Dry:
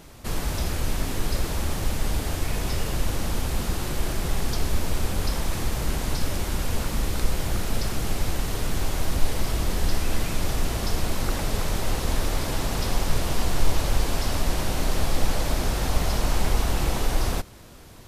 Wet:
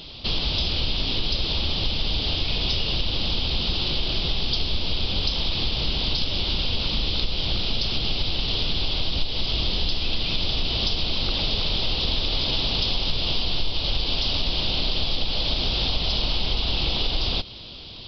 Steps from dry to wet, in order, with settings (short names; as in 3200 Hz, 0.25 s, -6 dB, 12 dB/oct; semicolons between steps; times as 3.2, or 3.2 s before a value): resonant high shelf 2400 Hz +10.5 dB, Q 3; compressor, threshold -21 dBFS, peak gain reduction 11 dB; downsampling 11025 Hz; gain +2.5 dB